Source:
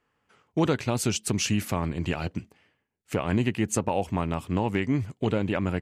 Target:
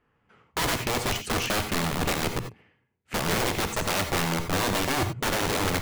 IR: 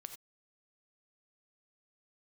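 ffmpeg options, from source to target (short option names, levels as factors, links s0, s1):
-filter_complex "[0:a]bass=f=250:g=5,treble=f=4000:g=-13,aeval=exprs='(mod(14.1*val(0)+1,2)-1)/14.1':c=same[s0];[1:a]atrim=start_sample=2205[s1];[s0][s1]afir=irnorm=-1:irlink=0,volume=2.51"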